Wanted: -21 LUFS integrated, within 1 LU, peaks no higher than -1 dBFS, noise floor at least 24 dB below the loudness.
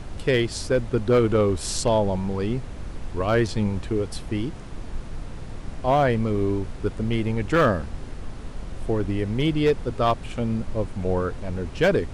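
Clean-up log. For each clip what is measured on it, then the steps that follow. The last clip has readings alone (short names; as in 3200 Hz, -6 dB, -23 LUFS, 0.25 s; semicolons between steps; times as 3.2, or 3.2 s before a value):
clipped 0.4%; flat tops at -12.5 dBFS; noise floor -37 dBFS; noise floor target -49 dBFS; loudness -24.5 LUFS; peak -12.5 dBFS; loudness target -21.0 LUFS
-> clip repair -12.5 dBFS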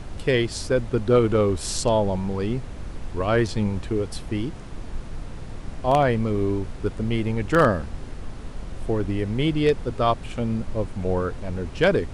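clipped 0.0%; noise floor -37 dBFS; noise floor target -48 dBFS
-> noise print and reduce 11 dB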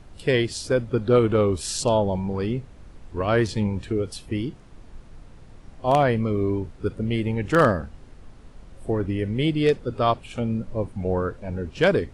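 noise floor -47 dBFS; noise floor target -48 dBFS
-> noise print and reduce 6 dB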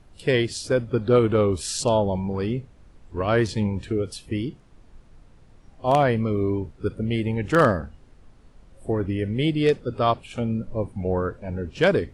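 noise floor -52 dBFS; loudness -24.0 LUFS; peak -5.0 dBFS; loudness target -21.0 LUFS
-> gain +3 dB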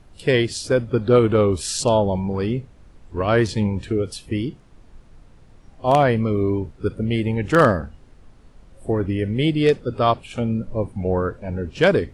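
loudness -21.0 LUFS; peak -2.0 dBFS; noise floor -49 dBFS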